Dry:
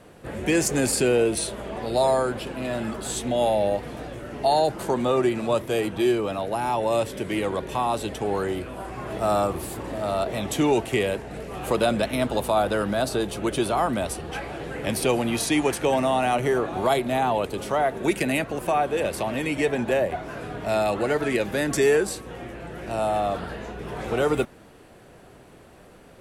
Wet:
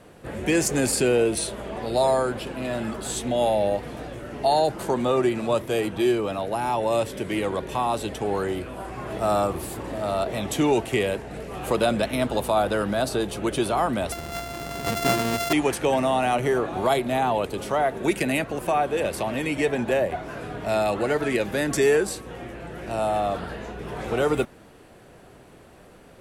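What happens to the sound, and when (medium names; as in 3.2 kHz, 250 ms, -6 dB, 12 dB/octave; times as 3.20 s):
14.12–15.53 s: sorted samples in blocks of 64 samples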